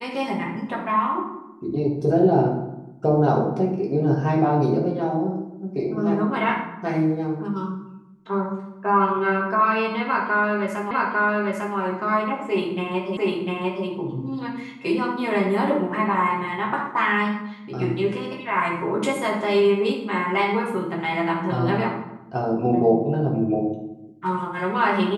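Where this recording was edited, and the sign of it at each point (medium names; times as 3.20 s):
10.91 s: repeat of the last 0.85 s
13.17 s: repeat of the last 0.7 s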